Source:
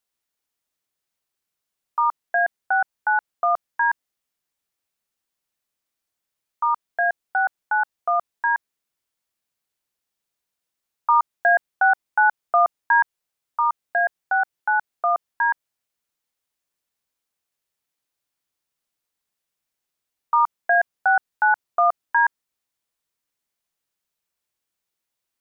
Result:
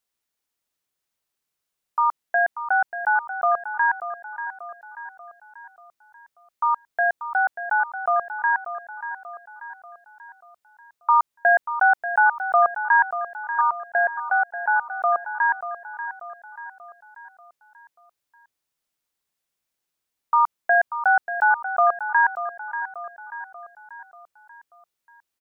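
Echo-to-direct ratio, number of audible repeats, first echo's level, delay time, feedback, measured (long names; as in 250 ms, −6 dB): −10.0 dB, 4, −11.0 dB, 587 ms, 49%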